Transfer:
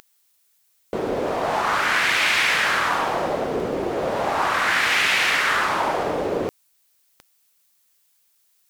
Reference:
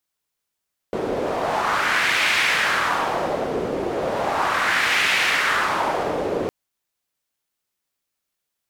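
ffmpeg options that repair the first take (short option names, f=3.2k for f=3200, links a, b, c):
-af "adeclick=t=4,agate=range=-21dB:threshold=-56dB"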